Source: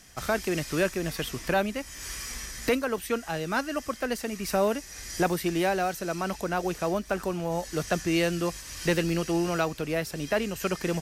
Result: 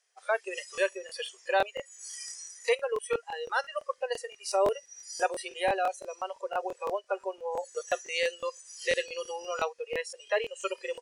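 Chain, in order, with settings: spectral noise reduction 21 dB; brick-wall FIR band-pass 380–11000 Hz; crackling interface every 0.17 s, samples 1024, repeat, from 0.73 s

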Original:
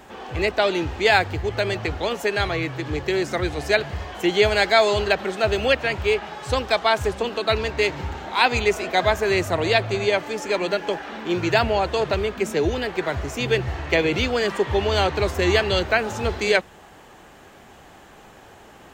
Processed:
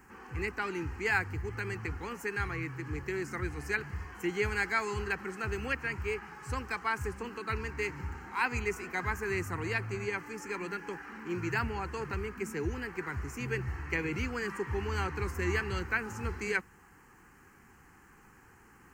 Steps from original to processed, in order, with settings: crackle 550 per s -51 dBFS; static phaser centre 1.5 kHz, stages 4; trim -8 dB

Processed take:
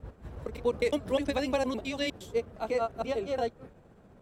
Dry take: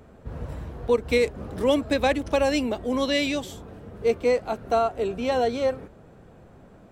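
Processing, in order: slices played last to first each 191 ms, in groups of 2; granular stretch 0.61×, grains 135 ms; trim -5.5 dB

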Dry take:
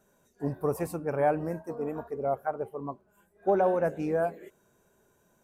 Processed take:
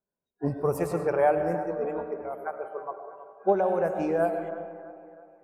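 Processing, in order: spectral noise reduction 27 dB; level-controlled noise filter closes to 1.5 kHz, open at -25 dBFS; 2.15–2.72 s: peaking EQ 780 Hz -> 140 Hz -12 dB 2.8 oct; 3.52–4.20 s: compression 3:1, threshold -27 dBFS, peak gain reduction 5.5 dB; feedback echo behind a band-pass 323 ms, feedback 48%, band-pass 1 kHz, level -14 dB; algorithmic reverb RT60 2 s, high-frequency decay 0.3×, pre-delay 65 ms, DRR 7.5 dB; 0.91–1.42 s: three bands compressed up and down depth 40%; trim +3 dB

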